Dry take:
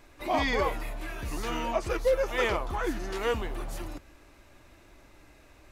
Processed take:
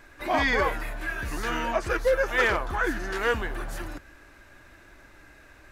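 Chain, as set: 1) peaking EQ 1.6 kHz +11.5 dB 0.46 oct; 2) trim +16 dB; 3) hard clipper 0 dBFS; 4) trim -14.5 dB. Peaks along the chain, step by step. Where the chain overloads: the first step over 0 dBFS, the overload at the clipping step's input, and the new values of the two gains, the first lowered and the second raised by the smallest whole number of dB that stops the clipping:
-12.0 dBFS, +4.0 dBFS, 0.0 dBFS, -14.5 dBFS; step 2, 4.0 dB; step 2 +12 dB, step 4 -10.5 dB

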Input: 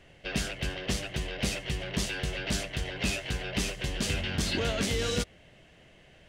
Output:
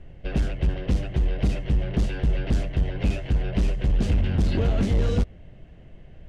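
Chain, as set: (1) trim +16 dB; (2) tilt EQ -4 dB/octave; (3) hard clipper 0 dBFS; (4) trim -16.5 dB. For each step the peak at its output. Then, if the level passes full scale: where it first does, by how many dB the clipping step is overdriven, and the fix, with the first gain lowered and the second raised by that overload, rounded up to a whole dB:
-2.0 dBFS, +9.5 dBFS, 0.0 dBFS, -16.5 dBFS; step 2, 9.5 dB; step 1 +6 dB, step 4 -6.5 dB

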